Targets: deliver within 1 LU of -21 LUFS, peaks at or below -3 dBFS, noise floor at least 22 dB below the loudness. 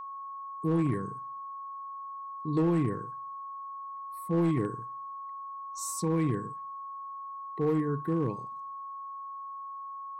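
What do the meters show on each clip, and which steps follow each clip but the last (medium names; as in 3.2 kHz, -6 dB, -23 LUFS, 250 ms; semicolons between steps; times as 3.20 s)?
clipped samples 0.8%; clipping level -21.0 dBFS; steady tone 1.1 kHz; tone level -38 dBFS; loudness -33.5 LUFS; peak level -21.0 dBFS; loudness target -21.0 LUFS
-> clip repair -21 dBFS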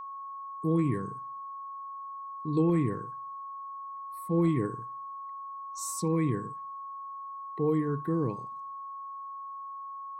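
clipped samples 0.0%; steady tone 1.1 kHz; tone level -38 dBFS
-> band-stop 1.1 kHz, Q 30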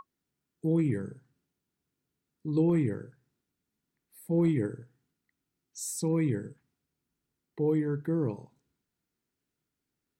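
steady tone not found; loudness -30.0 LUFS; peak level -16.0 dBFS; loudness target -21.0 LUFS
-> trim +9 dB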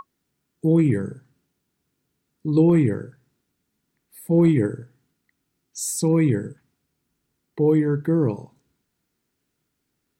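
loudness -21.0 LUFS; peak level -7.0 dBFS; noise floor -77 dBFS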